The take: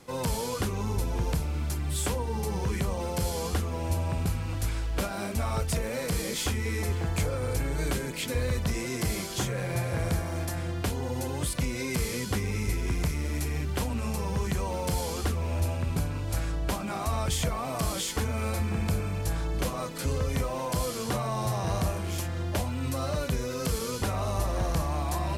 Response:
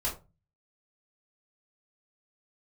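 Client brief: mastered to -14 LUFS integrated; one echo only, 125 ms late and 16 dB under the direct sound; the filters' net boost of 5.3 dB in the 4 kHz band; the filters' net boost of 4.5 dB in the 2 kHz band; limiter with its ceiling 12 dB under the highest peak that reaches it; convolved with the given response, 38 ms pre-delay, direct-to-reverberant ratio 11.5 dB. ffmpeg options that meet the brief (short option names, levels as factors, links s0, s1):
-filter_complex "[0:a]equalizer=f=2000:t=o:g=4,equalizer=f=4000:t=o:g=5.5,alimiter=level_in=1.19:limit=0.0631:level=0:latency=1,volume=0.841,aecho=1:1:125:0.158,asplit=2[s0][s1];[1:a]atrim=start_sample=2205,adelay=38[s2];[s1][s2]afir=irnorm=-1:irlink=0,volume=0.141[s3];[s0][s3]amix=inputs=2:normalize=0,volume=9.44"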